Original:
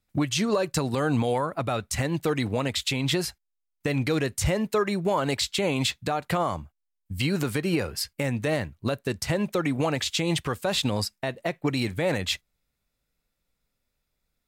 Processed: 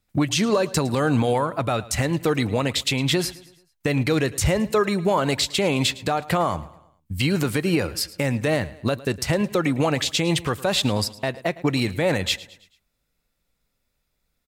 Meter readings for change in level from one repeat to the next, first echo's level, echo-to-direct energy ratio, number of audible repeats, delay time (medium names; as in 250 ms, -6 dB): -6.5 dB, -19.0 dB, -18.0 dB, 3, 109 ms